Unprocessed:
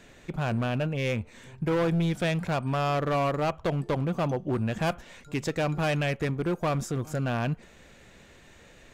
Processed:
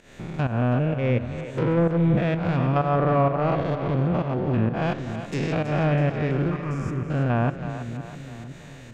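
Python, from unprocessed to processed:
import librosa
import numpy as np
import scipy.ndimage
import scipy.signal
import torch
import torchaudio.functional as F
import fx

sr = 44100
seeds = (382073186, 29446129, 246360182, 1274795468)

p1 = fx.spec_steps(x, sr, hold_ms=200)
p2 = fx.env_lowpass_down(p1, sr, base_hz=1400.0, full_db=-24.0)
p3 = fx.volume_shaper(p2, sr, bpm=128, per_beat=1, depth_db=-14, release_ms=188.0, shape='fast start')
p4 = fx.fixed_phaser(p3, sr, hz=1600.0, stages=4, at=(6.5, 7.1))
p5 = p4 + fx.echo_split(p4, sr, split_hz=390.0, low_ms=512, high_ms=326, feedback_pct=52, wet_db=-10.0, dry=0)
y = p5 * librosa.db_to_amplitude(7.5)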